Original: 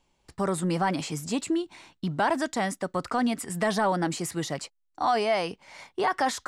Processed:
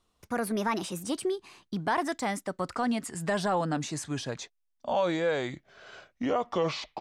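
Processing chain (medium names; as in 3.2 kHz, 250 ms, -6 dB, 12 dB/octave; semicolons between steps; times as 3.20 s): gliding tape speed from 126% -> 59%; trim -3 dB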